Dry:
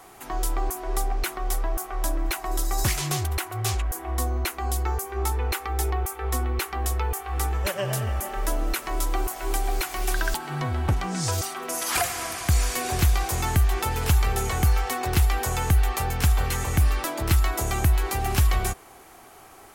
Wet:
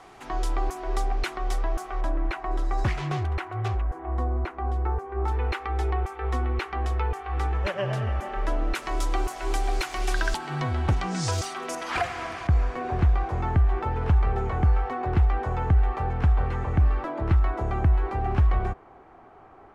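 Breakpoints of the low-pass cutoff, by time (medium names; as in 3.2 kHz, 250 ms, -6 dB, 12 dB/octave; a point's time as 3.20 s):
4.9 kHz
from 2.01 s 2.1 kHz
from 3.68 s 1.3 kHz
from 5.28 s 2.8 kHz
from 8.75 s 6.2 kHz
from 11.75 s 2.6 kHz
from 12.47 s 1.3 kHz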